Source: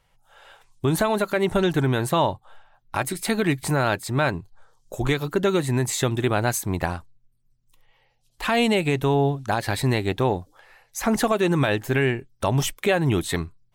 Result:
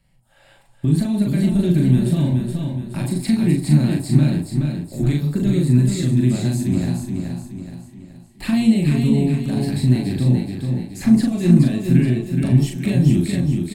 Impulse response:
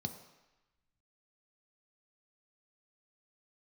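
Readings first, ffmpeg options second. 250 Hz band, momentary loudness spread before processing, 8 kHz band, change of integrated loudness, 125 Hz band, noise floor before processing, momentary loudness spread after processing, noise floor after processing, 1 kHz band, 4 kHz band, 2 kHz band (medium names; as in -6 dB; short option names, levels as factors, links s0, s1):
+9.0 dB, 8 LU, -3.5 dB, +5.0 dB, +9.5 dB, -65 dBFS, 9 LU, -52 dBFS, -13.5 dB, -3.5 dB, -8.5 dB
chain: -filter_complex "[0:a]acrossover=split=6700[s0][s1];[s1]acompressor=threshold=0.0112:ratio=4:attack=1:release=60[s2];[s0][s2]amix=inputs=2:normalize=0,equalizer=f=1400:w=2.8:g=-13,acrossover=split=350|3000[s3][s4][s5];[s4]acompressor=threshold=0.02:ratio=6[s6];[s3][s6][s5]amix=inputs=3:normalize=0,alimiter=limit=0.158:level=0:latency=1:release=361,tremolo=f=110:d=0.261,asplit=2[s7][s8];[s8]adelay=40,volume=0.708[s9];[s7][s9]amix=inputs=2:normalize=0,aecho=1:1:423|846|1269|1692|2115:0.562|0.242|0.104|0.0447|0.0192,asplit=2[s10][s11];[1:a]atrim=start_sample=2205,asetrate=61740,aresample=44100[s12];[s11][s12]afir=irnorm=-1:irlink=0,volume=0.891[s13];[s10][s13]amix=inputs=2:normalize=0,volume=1.26"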